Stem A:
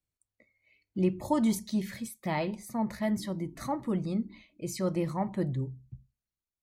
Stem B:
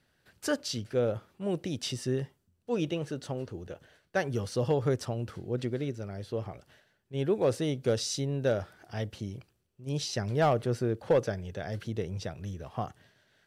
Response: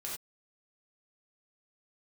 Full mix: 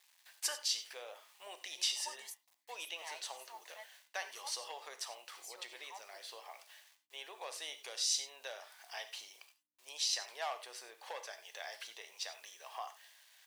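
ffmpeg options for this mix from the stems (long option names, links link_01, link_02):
-filter_complex "[0:a]adelay=750,volume=-9.5dB[link_01];[1:a]acrusher=bits=10:mix=0:aa=0.000001,acompressor=threshold=-35dB:ratio=2.5,aeval=exprs='val(0)+0.00141*(sin(2*PI*60*n/s)+sin(2*PI*2*60*n/s)/2+sin(2*PI*3*60*n/s)/3+sin(2*PI*4*60*n/s)/4+sin(2*PI*5*60*n/s)/5)':channel_layout=same,volume=3dB,asplit=3[link_02][link_03][link_04];[link_03]volume=-5.5dB[link_05];[link_04]apad=whole_len=325210[link_06];[link_01][link_06]sidechaingate=range=-33dB:threshold=-47dB:ratio=16:detection=peak[link_07];[2:a]atrim=start_sample=2205[link_08];[link_05][link_08]afir=irnorm=-1:irlink=0[link_09];[link_07][link_02][link_09]amix=inputs=3:normalize=0,highpass=frequency=920:width=0.5412,highpass=frequency=920:width=1.3066,equalizer=frequency=1400:width=3.3:gain=-12.5"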